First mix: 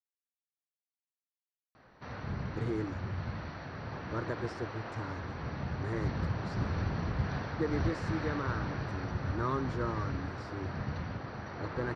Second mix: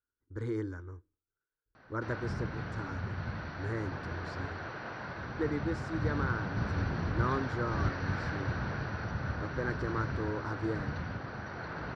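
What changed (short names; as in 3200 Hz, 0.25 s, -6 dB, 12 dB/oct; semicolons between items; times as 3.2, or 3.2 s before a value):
speech: entry -2.20 s; master: add bell 1500 Hz +7 dB 0.22 oct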